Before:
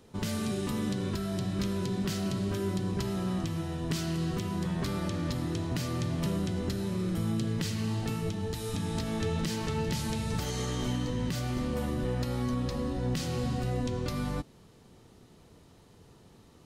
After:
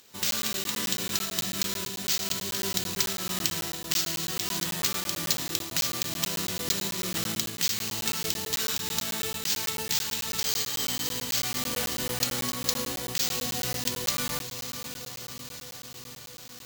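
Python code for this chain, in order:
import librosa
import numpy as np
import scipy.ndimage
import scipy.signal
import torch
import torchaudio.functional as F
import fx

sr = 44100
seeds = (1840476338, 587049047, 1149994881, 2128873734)

p1 = fx.high_shelf(x, sr, hz=2200.0, db=8.5)
p2 = fx.volume_shaper(p1, sr, bpm=96, per_beat=1, depth_db=-10, release_ms=120.0, shape='slow start')
p3 = p1 + (p2 * 10.0 ** (-2.0 / 20.0))
p4 = fx.echo_diffused(p3, sr, ms=570, feedback_pct=69, wet_db=-11.0)
p5 = np.repeat(p4[::4], 4)[:len(p4)]
p6 = fx.tilt_eq(p5, sr, slope=3.5)
p7 = fx.rider(p6, sr, range_db=3, speed_s=0.5)
p8 = fx.buffer_crackle(p7, sr, first_s=0.31, period_s=0.11, block=512, kind='zero')
y = p8 * 10.0 ** (-5.5 / 20.0)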